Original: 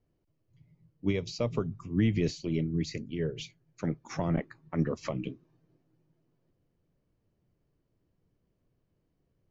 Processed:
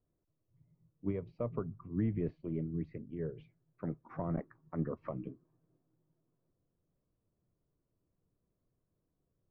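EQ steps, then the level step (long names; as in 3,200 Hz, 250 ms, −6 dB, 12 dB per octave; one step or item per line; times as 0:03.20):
transistor ladder low-pass 1,600 Hz, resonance 25%
notch filter 850 Hz, Q 12
−1.0 dB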